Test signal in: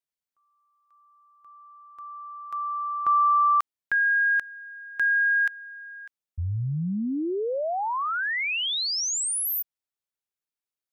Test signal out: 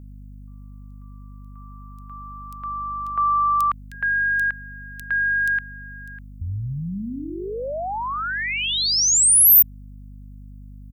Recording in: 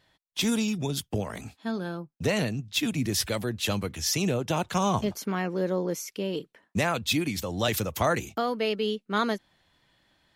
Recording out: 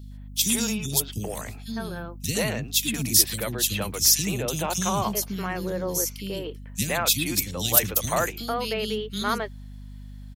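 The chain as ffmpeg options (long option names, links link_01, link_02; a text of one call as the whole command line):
ffmpeg -i in.wav -filter_complex "[0:a]aemphasis=mode=production:type=75kf,acrossover=split=310|2900[link_01][link_02][link_03];[link_01]adelay=30[link_04];[link_02]adelay=110[link_05];[link_04][link_05][link_03]amix=inputs=3:normalize=0,aeval=exprs='val(0)+0.0112*(sin(2*PI*50*n/s)+sin(2*PI*2*50*n/s)/2+sin(2*PI*3*50*n/s)/3+sin(2*PI*4*50*n/s)/4+sin(2*PI*5*50*n/s)/5)':channel_layout=same" out.wav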